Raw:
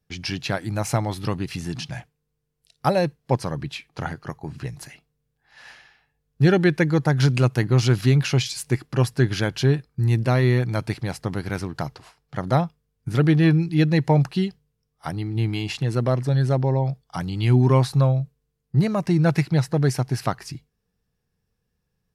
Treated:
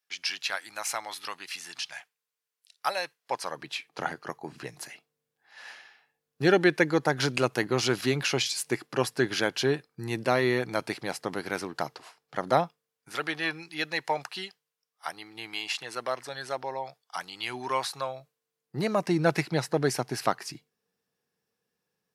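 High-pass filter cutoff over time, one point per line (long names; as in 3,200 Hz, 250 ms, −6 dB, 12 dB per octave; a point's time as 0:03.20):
0:03.16 1,200 Hz
0:03.89 340 Hz
0:12.63 340 Hz
0:13.18 880 Hz
0:18.07 880 Hz
0:18.95 300 Hz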